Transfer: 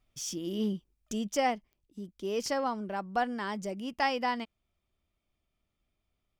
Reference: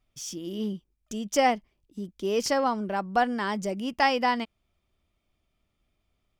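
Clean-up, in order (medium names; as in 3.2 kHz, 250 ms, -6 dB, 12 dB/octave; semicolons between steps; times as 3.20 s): de-click; gain correction +6 dB, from 1.32 s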